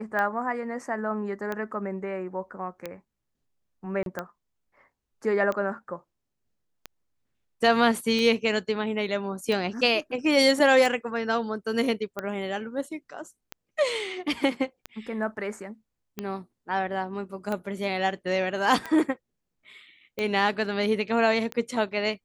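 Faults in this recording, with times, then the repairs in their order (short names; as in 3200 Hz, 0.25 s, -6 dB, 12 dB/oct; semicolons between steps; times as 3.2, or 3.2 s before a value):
tick 45 rpm -17 dBFS
4.03–4.06 gap 32 ms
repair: de-click; interpolate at 4.03, 32 ms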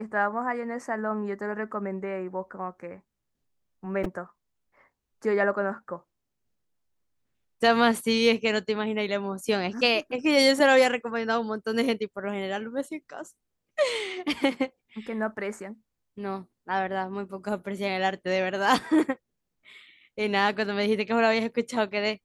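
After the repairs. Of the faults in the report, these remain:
none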